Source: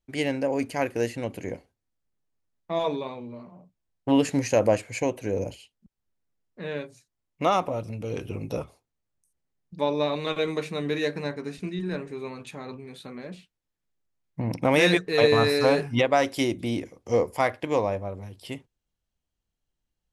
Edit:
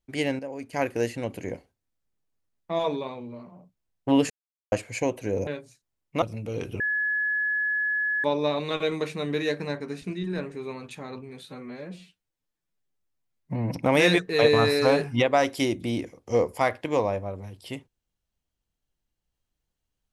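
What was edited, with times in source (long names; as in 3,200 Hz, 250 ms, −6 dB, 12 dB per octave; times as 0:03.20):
0:00.39–0:00.73: clip gain −10 dB
0:04.30–0:04.72: silence
0:05.47–0:06.73: remove
0:07.48–0:07.78: remove
0:08.36–0:09.80: beep over 1,700 Hz −23 dBFS
0:13.01–0:14.55: time-stretch 1.5×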